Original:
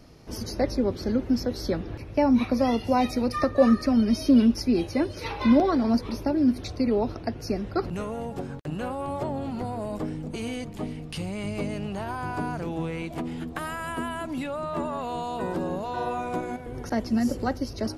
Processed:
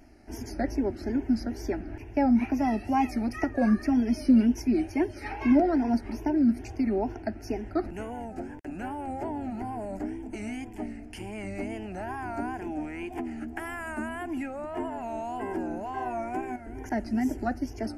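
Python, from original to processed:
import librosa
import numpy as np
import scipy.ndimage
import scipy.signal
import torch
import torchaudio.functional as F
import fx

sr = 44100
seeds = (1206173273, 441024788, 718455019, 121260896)

y = fx.high_shelf(x, sr, hz=9300.0, db=-8.0)
y = fx.fixed_phaser(y, sr, hz=760.0, stages=8)
y = fx.wow_flutter(y, sr, seeds[0], rate_hz=2.1, depth_cents=120.0)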